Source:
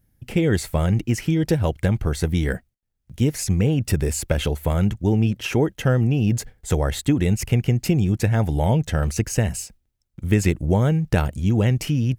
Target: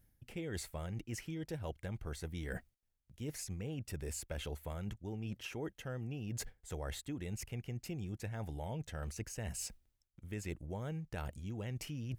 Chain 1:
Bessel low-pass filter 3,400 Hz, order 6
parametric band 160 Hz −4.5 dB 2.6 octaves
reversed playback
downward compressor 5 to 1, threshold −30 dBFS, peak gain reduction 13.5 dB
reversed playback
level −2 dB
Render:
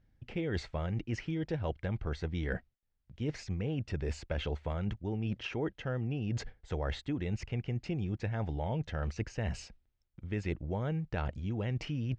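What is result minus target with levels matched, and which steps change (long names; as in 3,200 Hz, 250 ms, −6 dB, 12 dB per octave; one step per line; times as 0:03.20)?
downward compressor: peak gain reduction −7.5 dB; 4,000 Hz band −3.0 dB
change: downward compressor 5 to 1, threshold −39 dBFS, peak gain reduction 21 dB
remove: Bessel low-pass filter 3,400 Hz, order 6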